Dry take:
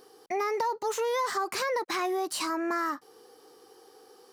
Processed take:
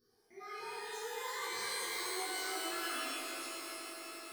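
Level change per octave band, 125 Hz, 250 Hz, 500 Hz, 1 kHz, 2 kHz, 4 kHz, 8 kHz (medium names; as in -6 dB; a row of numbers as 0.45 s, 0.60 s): no reading, -13.0 dB, -14.0 dB, -12.0 dB, -5.0 dB, -1.5 dB, -1.5 dB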